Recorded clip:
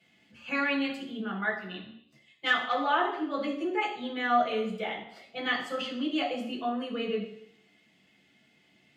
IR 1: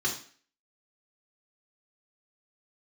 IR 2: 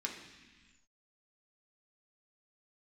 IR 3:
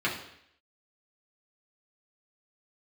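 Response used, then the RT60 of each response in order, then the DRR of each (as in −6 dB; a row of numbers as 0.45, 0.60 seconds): 3; 0.45, 1.3, 0.70 seconds; −3.5, −1.0, −6.0 decibels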